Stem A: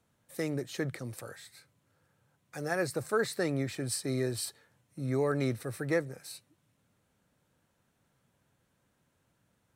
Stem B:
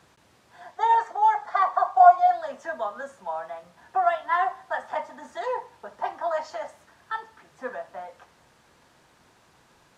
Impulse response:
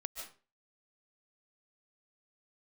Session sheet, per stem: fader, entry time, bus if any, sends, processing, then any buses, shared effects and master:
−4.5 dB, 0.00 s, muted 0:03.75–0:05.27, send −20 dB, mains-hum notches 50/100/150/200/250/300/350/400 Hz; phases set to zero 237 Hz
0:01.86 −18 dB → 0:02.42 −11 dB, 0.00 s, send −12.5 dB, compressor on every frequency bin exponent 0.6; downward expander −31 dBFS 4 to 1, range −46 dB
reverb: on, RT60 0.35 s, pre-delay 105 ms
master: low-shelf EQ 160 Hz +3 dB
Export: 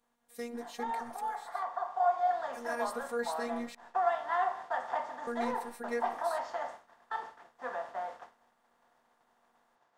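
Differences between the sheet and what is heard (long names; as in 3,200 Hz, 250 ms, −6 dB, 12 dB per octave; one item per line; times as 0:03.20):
stem B: send off
master: missing low-shelf EQ 160 Hz +3 dB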